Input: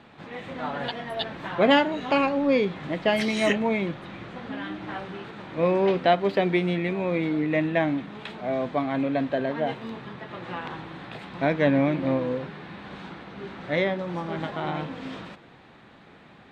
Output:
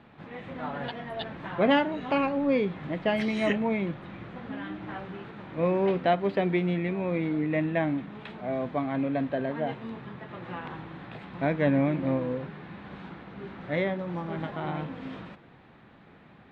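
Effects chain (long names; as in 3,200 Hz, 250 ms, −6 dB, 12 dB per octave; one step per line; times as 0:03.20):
bass and treble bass +4 dB, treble −11 dB
level −4 dB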